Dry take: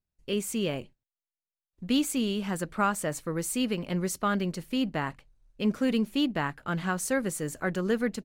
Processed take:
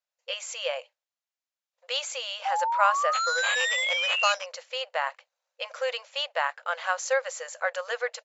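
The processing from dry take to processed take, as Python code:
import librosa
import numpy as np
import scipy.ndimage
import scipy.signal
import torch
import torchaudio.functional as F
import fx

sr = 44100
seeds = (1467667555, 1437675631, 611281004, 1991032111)

y = fx.spec_paint(x, sr, seeds[0], shape='rise', start_s=2.45, length_s=1.88, low_hz=770.0, high_hz=3000.0, level_db=-31.0)
y = fx.sample_hold(y, sr, seeds[1], rate_hz=5500.0, jitter_pct=0, at=(3.13, 4.46))
y = fx.brickwall_bandpass(y, sr, low_hz=480.0, high_hz=7600.0)
y = y * librosa.db_to_amplitude(4.5)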